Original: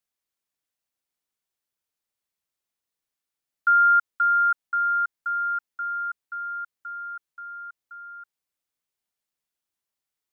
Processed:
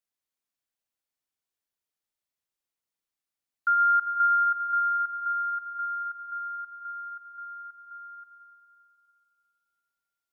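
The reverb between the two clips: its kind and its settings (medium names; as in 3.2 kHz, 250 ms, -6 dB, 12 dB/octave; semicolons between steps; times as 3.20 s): algorithmic reverb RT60 2.8 s, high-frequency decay 0.8×, pre-delay 20 ms, DRR 5.5 dB; trim -4.5 dB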